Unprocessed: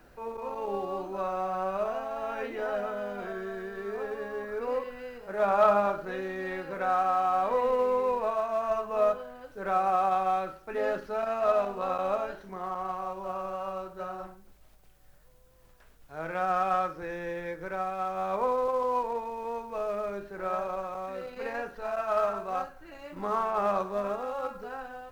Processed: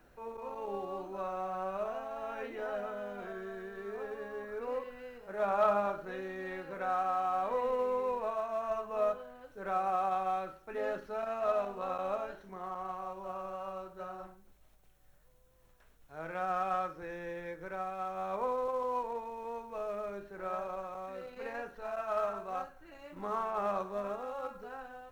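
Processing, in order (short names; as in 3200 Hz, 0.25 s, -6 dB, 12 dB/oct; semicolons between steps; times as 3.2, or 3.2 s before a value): notch 4800 Hz, Q 12; gain -6 dB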